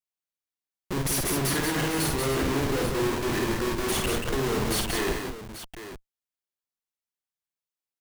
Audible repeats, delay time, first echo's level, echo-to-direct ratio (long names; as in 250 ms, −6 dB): 3, 52 ms, −4.0 dB, −1.0 dB